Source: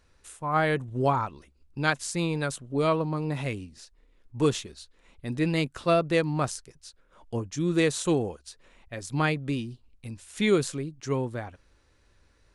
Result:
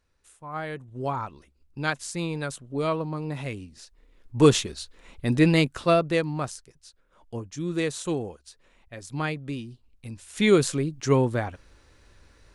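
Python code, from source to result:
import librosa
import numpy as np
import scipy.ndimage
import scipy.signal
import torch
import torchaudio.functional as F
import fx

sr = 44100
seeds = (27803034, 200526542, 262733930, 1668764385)

y = fx.gain(x, sr, db=fx.line((0.83, -9.0), (1.29, -2.0), (3.49, -2.0), (4.59, 8.5), (5.32, 8.5), (6.5, -3.5), (9.66, -3.5), (10.93, 7.5)))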